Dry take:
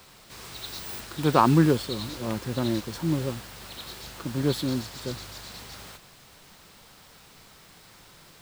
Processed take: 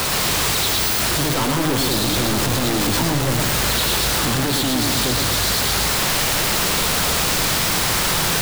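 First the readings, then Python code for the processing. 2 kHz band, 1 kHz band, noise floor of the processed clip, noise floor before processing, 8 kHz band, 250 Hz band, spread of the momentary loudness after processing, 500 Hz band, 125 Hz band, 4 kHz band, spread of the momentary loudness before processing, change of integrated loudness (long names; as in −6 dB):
+18.5 dB, +8.0 dB, −20 dBFS, −53 dBFS, +23.5 dB, +4.5 dB, 2 LU, +6.5 dB, +6.5 dB, +19.0 dB, 20 LU, +9.5 dB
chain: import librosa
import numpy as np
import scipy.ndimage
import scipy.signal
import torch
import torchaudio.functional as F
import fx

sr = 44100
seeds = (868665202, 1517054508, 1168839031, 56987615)

y = np.sign(x) * np.sqrt(np.mean(np.square(x)))
y = fx.echo_warbled(y, sr, ms=115, feedback_pct=61, rate_hz=2.8, cents=215, wet_db=-4.0)
y = y * 10.0 ** (8.0 / 20.0)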